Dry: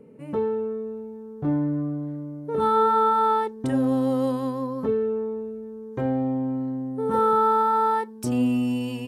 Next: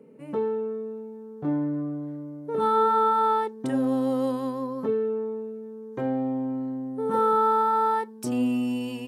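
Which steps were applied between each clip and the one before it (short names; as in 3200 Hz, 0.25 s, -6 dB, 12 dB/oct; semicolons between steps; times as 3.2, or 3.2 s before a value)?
HPF 170 Hz 12 dB/oct; gain -1.5 dB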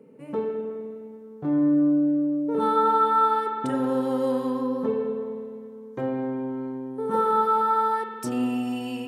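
spring tank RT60 2.3 s, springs 51 ms, chirp 45 ms, DRR 3 dB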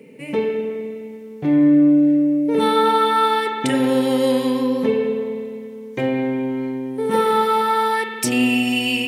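resonant high shelf 1700 Hz +8.5 dB, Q 3; gain +7.5 dB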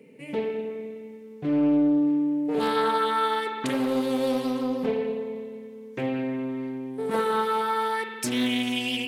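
Doppler distortion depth 0.36 ms; gain -7.5 dB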